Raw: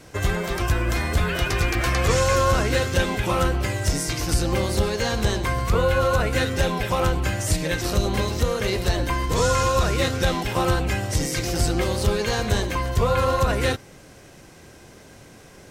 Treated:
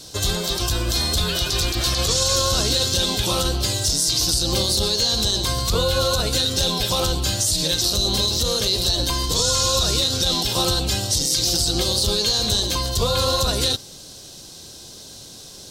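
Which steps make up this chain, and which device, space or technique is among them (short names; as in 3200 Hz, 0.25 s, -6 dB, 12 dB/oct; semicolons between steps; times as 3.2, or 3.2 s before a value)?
over-bright horn tweeter (resonant high shelf 2900 Hz +11 dB, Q 3; limiter -10 dBFS, peak gain reduction 10.5 dB)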